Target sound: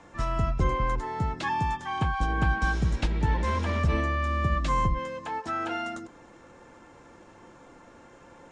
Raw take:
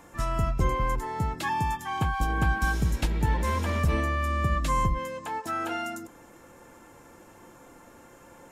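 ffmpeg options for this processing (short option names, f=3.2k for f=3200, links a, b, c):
-filter_complex "[0:a]acrossover=split=370|570|6900[a][b][c][d];[d]acrusher=samples=17:mix=1:aa=0.000001[e];[a][b][c][e]amix=inputs=4:normalize=0,aresample=22050,aresample=44100"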